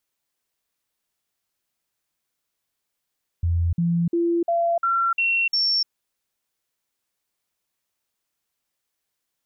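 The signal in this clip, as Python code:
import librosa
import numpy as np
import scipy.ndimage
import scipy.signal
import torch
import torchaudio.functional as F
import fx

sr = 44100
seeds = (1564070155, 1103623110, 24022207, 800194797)

y = fx.stepped_sweep(sr, from_hz=85.1, direction='up', per_octave=1, tones=7, dwell_s=0.3, gap_s=0.05, level_db=-18.0)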